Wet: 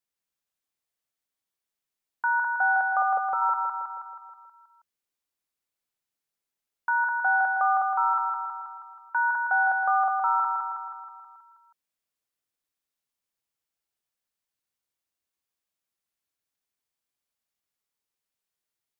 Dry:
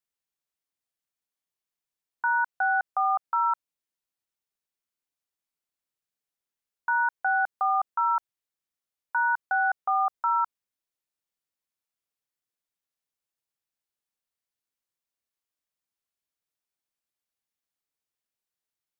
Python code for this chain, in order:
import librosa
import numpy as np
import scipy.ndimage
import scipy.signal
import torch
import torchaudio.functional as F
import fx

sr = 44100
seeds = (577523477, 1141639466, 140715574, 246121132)

p1 = fx.low_shelf_res(x, sr, hz=660.0, db=7.0, q=3.0, at=(3.02, 3.42))
y = p1 + fx.echo_feedback(p1, sr, ms=160, feedback_pct=59, wet_db=-4.0, dry=0)